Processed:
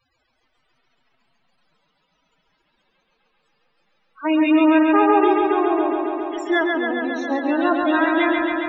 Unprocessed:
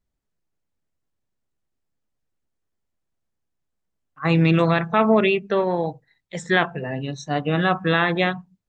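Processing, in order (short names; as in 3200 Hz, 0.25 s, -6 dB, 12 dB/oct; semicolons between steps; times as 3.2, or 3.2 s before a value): LPF 6600 Hz 12 dB/oct; crackle 340/s -42 dBFS; formant-preserving pitch shift +11 st; loudest bins only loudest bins 16; analogue delay 0.137 s, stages 4096, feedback 79%, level -3.5 dB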